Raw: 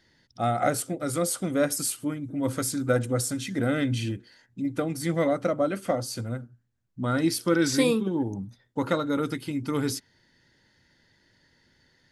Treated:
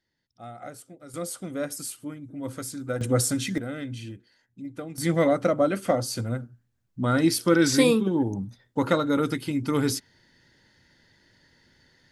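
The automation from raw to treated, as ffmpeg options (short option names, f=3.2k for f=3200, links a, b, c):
-af "asetnsamples=n=441:p=0,asendcmd='1.14 volume volume -6.5dB;3.01 volume volume 4dB;3.58 volume volume -8.5dB;4.98 volume volume 3dB',volume=-16dB"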